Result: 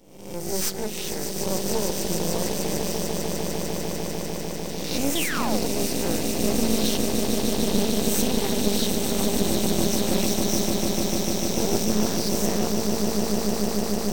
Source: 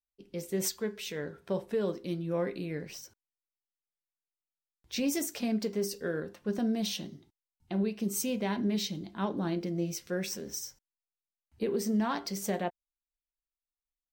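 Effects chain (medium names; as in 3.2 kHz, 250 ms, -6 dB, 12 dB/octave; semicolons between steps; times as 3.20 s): reverse spectral sustain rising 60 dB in 0.81 s; peaking EQ 1.2 kHz -14 dB 1.2 oct; on a send: echo with a slow build-up 149 ms, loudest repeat 8, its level -7 dB; on the sum: painted sound fall, 5.15–5.60 s, 440–3700 Hz -33 dBFS; half-wave rectifier; trim +8 dB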